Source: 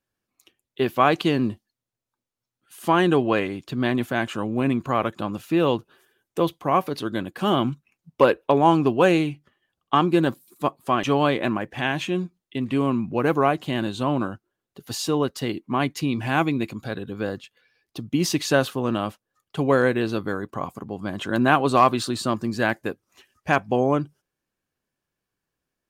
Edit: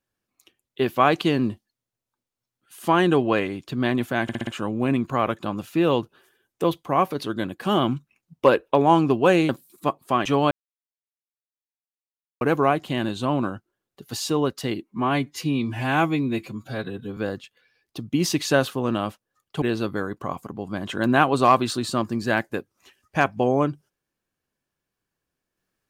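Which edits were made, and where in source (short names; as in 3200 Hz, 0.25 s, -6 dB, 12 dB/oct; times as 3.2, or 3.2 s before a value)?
4.23 stutter 0.06 s, 5 plays
9.25–10.27 cut
11.29–13.19 mute
15.61–17.17 stretch 1.5×
19.62–19.94 cut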